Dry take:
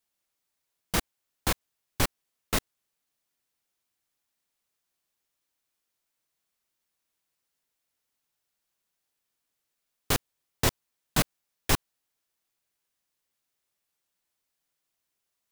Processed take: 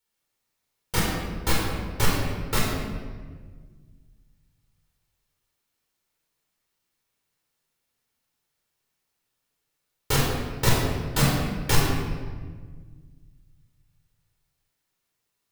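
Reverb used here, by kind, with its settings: simulated room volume 1700 m³, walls mixed, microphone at 4.4 m; trim -2.5 dB

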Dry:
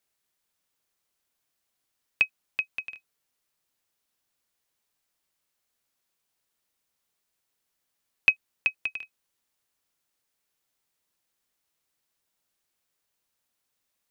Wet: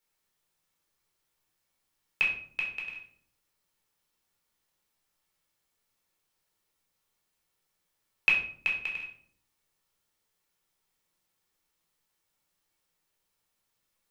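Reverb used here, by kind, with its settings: simulated room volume 690 m³, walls furnished, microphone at 4.3 m; trim -4.5 dB

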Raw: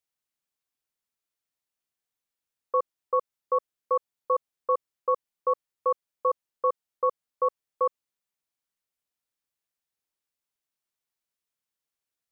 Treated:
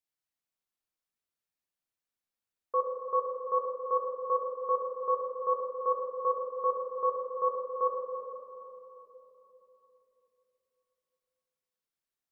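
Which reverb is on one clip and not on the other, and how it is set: simulated room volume 210 m³, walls hard, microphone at 0.52 m; trim -6.5 dB

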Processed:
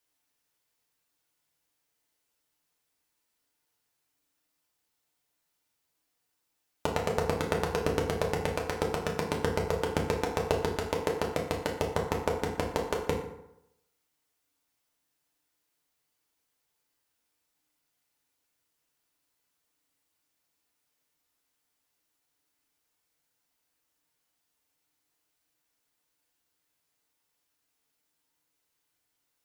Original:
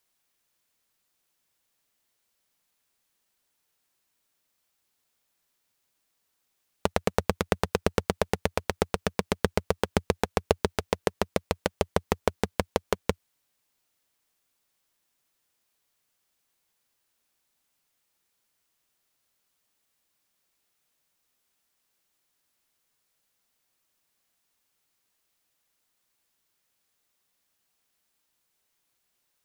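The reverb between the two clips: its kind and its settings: FDN reverb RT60 0.84 s, low-frequency decay 0.95×, high-frequency decay 0.6×, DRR -1.5 dB; trim -6 dB

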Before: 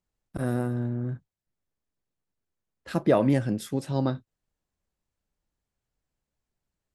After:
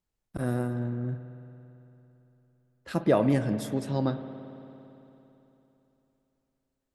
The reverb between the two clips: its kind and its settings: spring tank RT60 3.3 s, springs 56 ms, chirp 70 ms, DRR 10 dB; trim -1.5 dB

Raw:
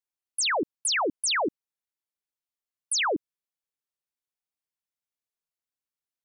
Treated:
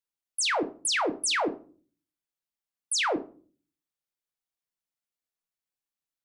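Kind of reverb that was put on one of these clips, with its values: simulated room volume 280 m³, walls furnished, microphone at 0.69 m; trim -1.5 dB

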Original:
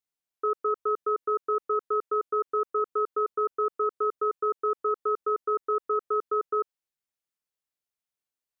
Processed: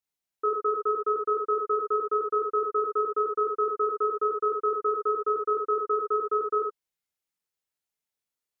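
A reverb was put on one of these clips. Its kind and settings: gated-style reverb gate 90 ms flat, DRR 0 dB; trim -1.5 dB

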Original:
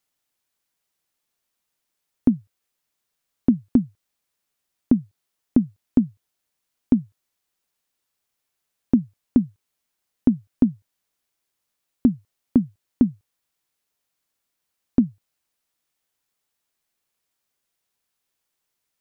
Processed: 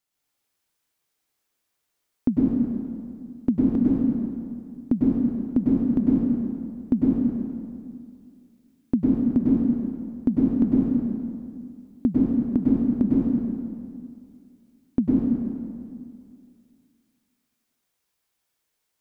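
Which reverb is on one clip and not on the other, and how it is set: plate-style reverb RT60 2.3 s, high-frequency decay 0.75×, pre-delay 90 ms, DRR -6.5 dB; trim -5 dB

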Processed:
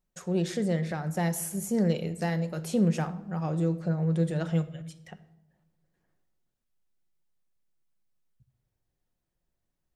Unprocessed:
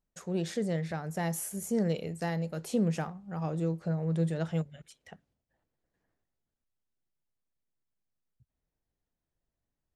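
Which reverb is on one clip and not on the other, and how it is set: simulated room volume 3200 m³, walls furnished, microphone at 0.97 m; trim +2.5 dB

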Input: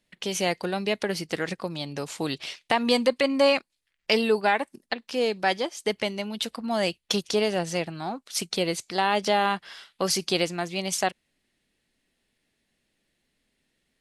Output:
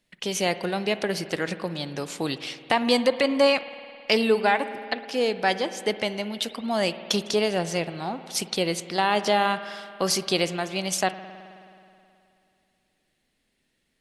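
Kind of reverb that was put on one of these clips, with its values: spring tank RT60 2.6 s, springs 53 ms, chirp 65 ms, DRR 12 dB; trim +1 dB

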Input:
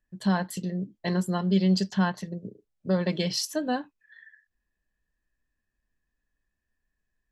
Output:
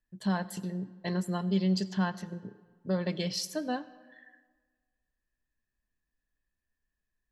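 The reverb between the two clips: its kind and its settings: algorithmic reverb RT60 1.5 s, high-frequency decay 0.7×, pre-delay 45 ms, DRR 17.5 dB; trim -5 dB

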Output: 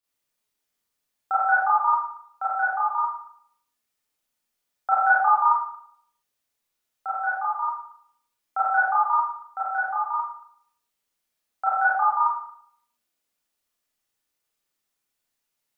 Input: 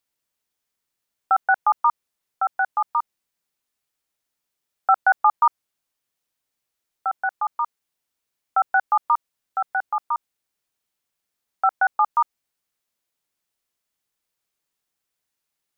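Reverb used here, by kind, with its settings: Schroeder reverb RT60 0.64 s, combs from 26 ms, DRR -9 dB; trim -8.5 dB

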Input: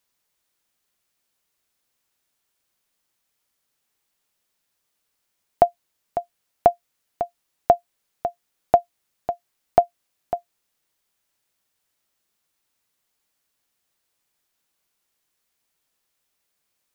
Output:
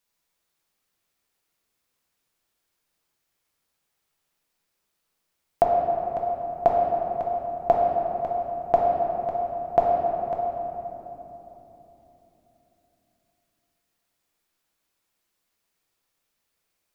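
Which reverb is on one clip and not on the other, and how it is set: simulated room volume 220 m³, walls hard, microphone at 0.7 m; trim -4.5 dB

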